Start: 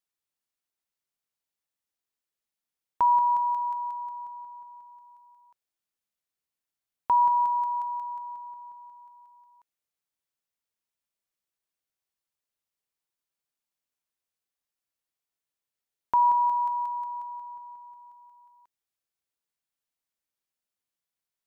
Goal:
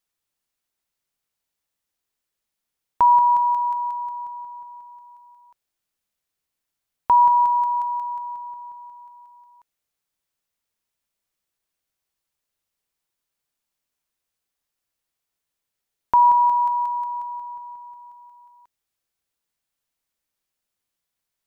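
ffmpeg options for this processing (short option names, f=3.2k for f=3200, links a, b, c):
-af "lowshelf=f=78:g=6.5,volume=6.5dB"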